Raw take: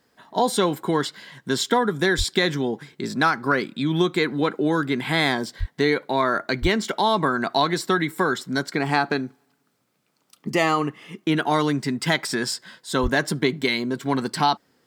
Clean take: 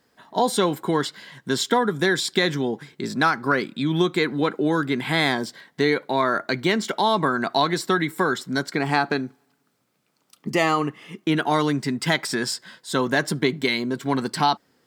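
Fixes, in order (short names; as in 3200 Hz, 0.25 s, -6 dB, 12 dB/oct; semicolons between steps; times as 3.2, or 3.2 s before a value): de-plosive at 2.17/5.59/6.61/13.02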